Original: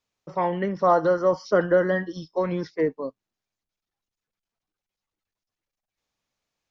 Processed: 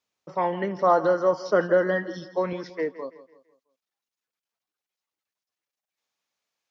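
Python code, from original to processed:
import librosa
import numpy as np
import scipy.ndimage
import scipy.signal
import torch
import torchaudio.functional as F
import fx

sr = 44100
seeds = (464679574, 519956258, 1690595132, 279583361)

y = fx.highpass(x, sr, hz=fx.steps((0.0, 220.0), (2.53, 600.0)), slope=6)
y = fx.echo_feedback(y, sr, ms=166, feedback_pct=40, wet_db=-16)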